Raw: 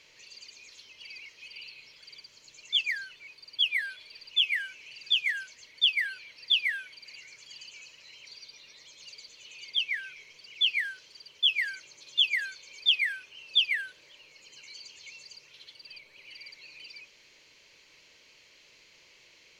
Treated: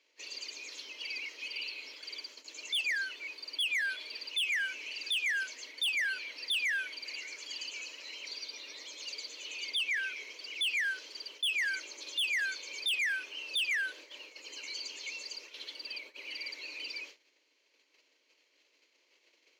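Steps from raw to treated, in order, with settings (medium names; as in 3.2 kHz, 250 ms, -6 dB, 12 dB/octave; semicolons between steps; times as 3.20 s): saturation -27.5 dBFS, distortion -7 dB; gate -55 dBFS, range -21 dB; bass shelf 400 Hz +7.5 dB; peak limiter -33.5 dBFS, peak gain reduction 7 dB; elliptic high-pass 270 Hz, stop band 40 dB; peaking EQ 9.2 kHz -3.5 dB 0.31 oct; trim +7 dB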